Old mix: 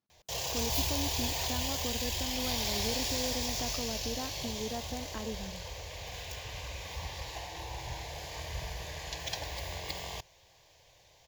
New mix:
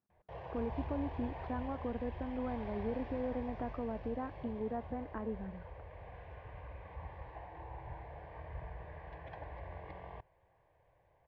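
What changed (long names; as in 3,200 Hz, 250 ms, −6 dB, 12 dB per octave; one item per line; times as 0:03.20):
background −5.5 dB
master: add low-pass filter 1,700 Hz 24 dB per octave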